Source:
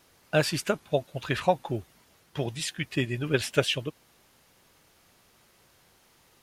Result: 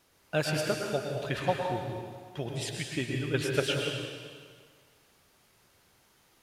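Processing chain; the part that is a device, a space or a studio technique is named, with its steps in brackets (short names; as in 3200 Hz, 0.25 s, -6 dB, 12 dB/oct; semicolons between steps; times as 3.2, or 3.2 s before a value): stairwell (reverb RT60 1.8 s, pre-delay 0.102 s, DRR 0.5 dB); gain -5.5 dB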